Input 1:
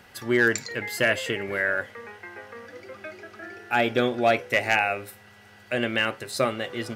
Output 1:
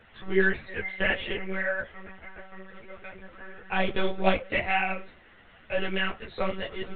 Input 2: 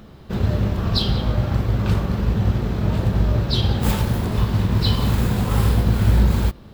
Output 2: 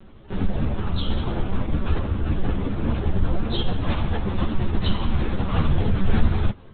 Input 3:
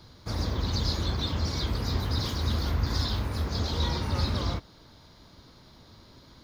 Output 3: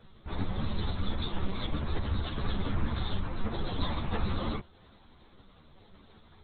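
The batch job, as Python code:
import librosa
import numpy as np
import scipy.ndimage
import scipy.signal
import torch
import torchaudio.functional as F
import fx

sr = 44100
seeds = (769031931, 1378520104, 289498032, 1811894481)

y = fx.lpc_monotone(x, sr, seeds[0], pitch_hz=190.0, order=10)
y = fx.ensemble(y, sr)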